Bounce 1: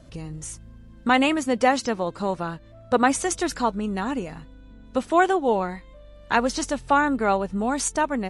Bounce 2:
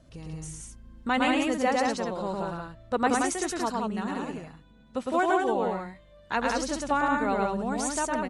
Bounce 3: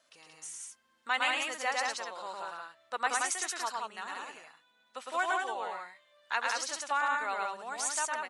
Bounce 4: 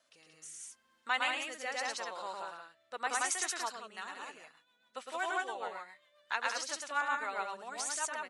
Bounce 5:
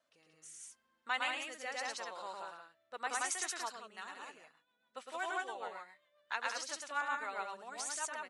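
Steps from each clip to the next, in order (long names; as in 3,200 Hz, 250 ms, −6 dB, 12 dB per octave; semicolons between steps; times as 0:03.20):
loudspeakers that aren't time-aligned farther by 37 metres −2 dB, 61 metres −3 dB; level −7.5 dB
high-pass filter 1,100 Hz 12 dB per octave
rotating-speaker cabinet horn 0.8 Hz, later 7.5 Hz, at 0:03.63
one half of a high-frequency compander decoder only; level −3.5 dB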